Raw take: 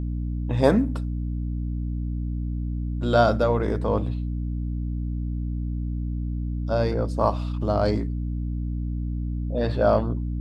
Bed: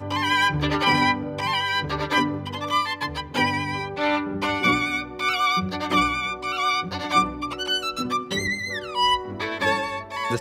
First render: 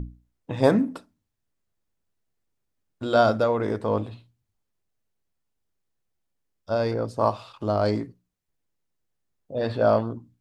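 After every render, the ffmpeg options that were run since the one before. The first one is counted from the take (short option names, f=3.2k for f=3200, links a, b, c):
-af "bandreject=f=60:t=h:w=6,bandreject=f=120:t=h:w=6,bandreject=f=180:t=h:w=6,bandreject=f=240:t=h:w=6,bandreject=f=300:t=h:w=6"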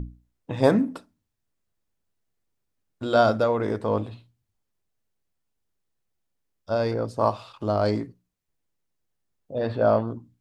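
-filter_complex "[0:a]asettb=1/sr,asplit=3[a][b][c];[a]atrim=end=9.584[d];[b]atrim=start=9.58:end=10.08,asetpts=PTS-STARTPTS,afade=t=in:d=0.004:c=qsin,afade=t=out:st=0.496:d=0.004:c=qsin,highshelf=f=3.9k:g=-10[e];[c]atrim=start=10.076[f];[d][e]acrossfade=d=0.004:c1=hsin:c2=qsin[g];[g][f]acrossfade=d=0.004:c1=qsin:c2=hsin"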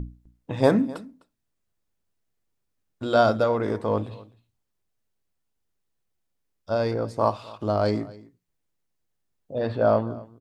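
-af "aecho=1:1:255:0.0891"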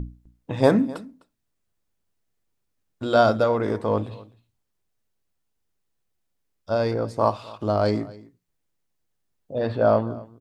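-af "volume=1.5dB"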